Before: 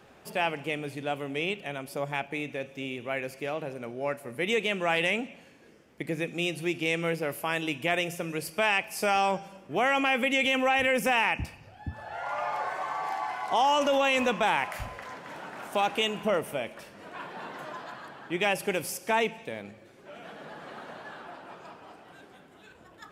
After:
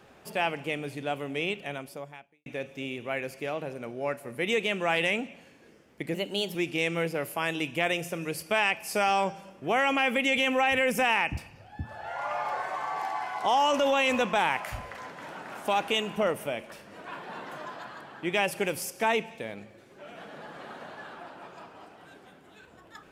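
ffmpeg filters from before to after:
-filter_complex "[0:a]asplit=4[a][b][c][d];[a]atrim=end=2.46,asetpts=PTS-STARTPTS,afade=t=out:st=1.75:d=0.71:c=qua[e];[b]atrim=start=2.46:end=6.144,asetpts=PTS-STARTPTS,afade=t=in:d=0.004:c=hsin[f];[c]atrim=start=6.14:end=6.62,asetpts=PTS-STARTPTS,asetrate=52038,aresample=44100[g];[d]atrim=start=6.616[h];[e][f]concat=n=2:v=0:a=1[i];[i][g]acrossfade=d=0.004:c1=hsin:c2=hsin[j];[j][h]acrossfade=d=0.004:c1=hsin:c2=hsin"

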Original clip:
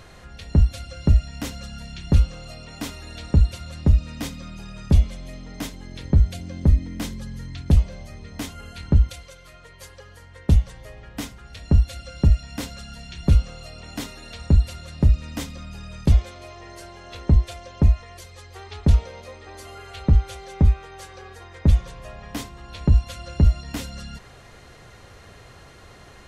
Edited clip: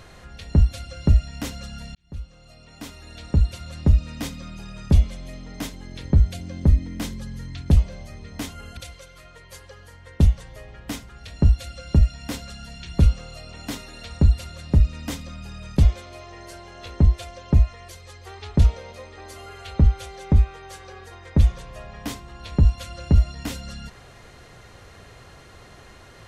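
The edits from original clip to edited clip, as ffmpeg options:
-filter_complex "[0:a]asplit=3[a][b][c];[a]atrim=end=1.95,asetpts=PTS-STARTPTS,afade=t=out:st=1.946:d=0.004:c=hsin[d];[b]atrim=start=1.95:end=8.772,asetpts=PTS-STARTPTS,afade=t=in:d=1.85[e];[c]atrim=start=9.058[f];[d][e]concat=n=2:v=0:a=1[g];[g][f]acrossfade=d=0.004:c1=hsin:c2=hsin"

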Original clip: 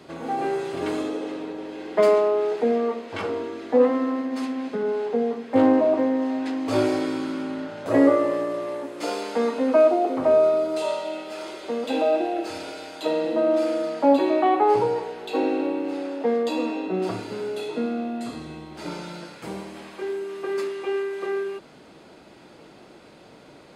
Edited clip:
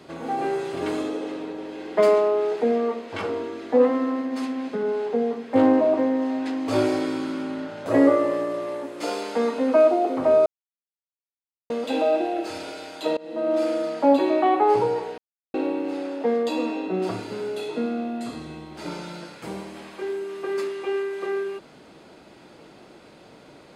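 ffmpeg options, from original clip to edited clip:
-filter_complex "[0:a]asplit=6[a][b][c][d][e][f];[a]atrim=end=10.46,asetpts=PTS-STARTPTS,afade=t=out:st=10.456:d=0.004:c=hsin[g];[b]atrim=start=10.46:end=11.7,asetpts=PTS-STARTPTS,volume=0[h];[c]atrim=start=11.7:end=13.17,asetpts=PTS-STARTPTS,afade=t=in:d=0.004:c=hsin,afade=t=out:st=1.466:d=0.004:c=hsin:silence=0.0630957[i];[d]atrim=start=13.17:end=15.18,asetpts=PTS-STARTPTS,afade=t=in:d=0.45:silence=0.0630957,afade=t=out:st=2.006:d=0.004:c=hsin[j];[e]atrim=start=15.18:end=15.54,asetpts=PTS-STARTPTS,volume=0[k];[f]atrim=start=15.54,asetpts=PTS-STARTPTS,afade=t=in:d=0.004:c=hsin[l];[g][h][i][j][k][l]concat=n=6:v=0:a=1"

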